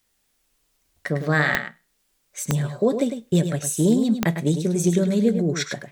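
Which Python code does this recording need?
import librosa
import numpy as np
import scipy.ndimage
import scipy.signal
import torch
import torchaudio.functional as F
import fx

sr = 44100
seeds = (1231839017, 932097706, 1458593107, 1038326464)

y = fx.fix_declick_ar(x, sr, threshold=10.0)
y = fx.fix_echo_inverse(y, sr, delay_ms=103, level_db=-8.5)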